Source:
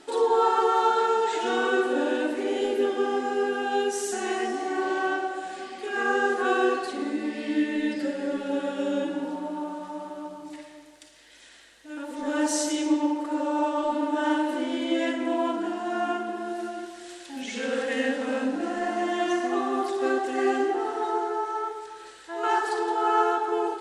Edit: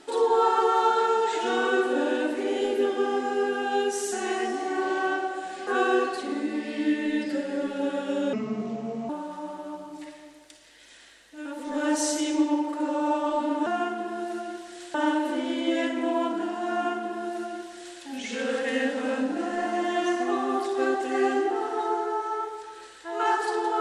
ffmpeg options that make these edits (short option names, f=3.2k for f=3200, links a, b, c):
-filter_complex "[0:a]asplit=6[a][b][c][d][e][f];[a]atrim=end=5.672[g];[b]atrim=start=6.368:end=9.034[h];[c]atrim=start=9.03:end=9.61,asetpts=PTS-STARTPTS,asetrate=33516,aresample=44100,atrim=end_sample=33655,asetpts=PTS-STARTPTS[i];[d]atrim=start=9.606:end=14.182[j];[e]atrim=start=15.948:end=17.232[k];[f]atrim=start=14.178[l];[g][h]acrossfade=d=0.004:c1=hsin:c2=hsin[m];[m][i]acrossfade=d=0.004:c1=hsin:c2=hsin[n];[n][j]acrossfade=d=0.004:c1=hsin:c2=hsin[o];[o][k]acrossfade=d=0.004:c1=hsin:c2=hsin[p];[p][l]acrossfade=d=0.004:c1=hsin:c2=hsin"